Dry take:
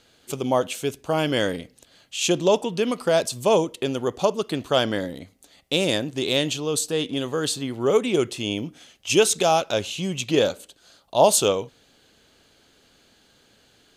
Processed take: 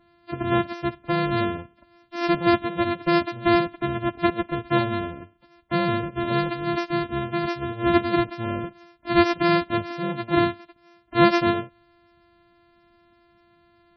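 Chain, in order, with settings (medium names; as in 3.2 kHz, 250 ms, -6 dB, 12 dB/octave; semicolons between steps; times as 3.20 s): sorted samples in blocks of 128 samples; loudest bins only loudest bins 32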